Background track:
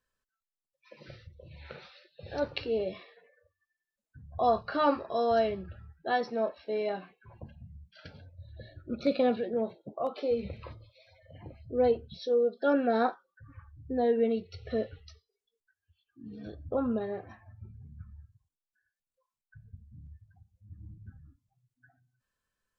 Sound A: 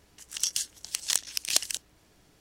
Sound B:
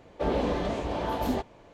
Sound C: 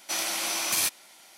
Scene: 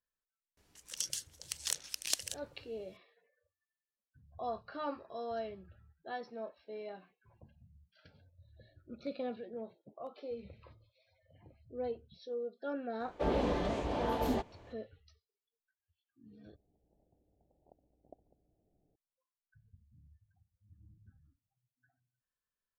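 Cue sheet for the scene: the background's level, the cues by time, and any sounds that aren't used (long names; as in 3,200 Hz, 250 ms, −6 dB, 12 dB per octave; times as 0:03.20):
background track −13 dB
0:00.57: mix in A −9 dB
0:13.00: mix in B −4.5 dB
0:16.56: overwrite with A −13 dB + Butterworth low-pass 780 Hz 72 dB per octave
not used: C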